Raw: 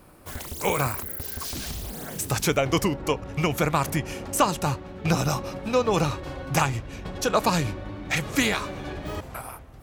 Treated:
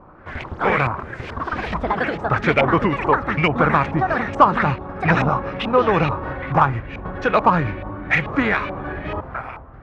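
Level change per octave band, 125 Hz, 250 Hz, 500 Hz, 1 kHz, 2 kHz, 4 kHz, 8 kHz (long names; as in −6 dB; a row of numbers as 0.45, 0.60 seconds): +4.5 dB, +5.0 dB, +5.5 dB, +9.5 dB, +9.0 dB, −2.0 dB, below −20 dB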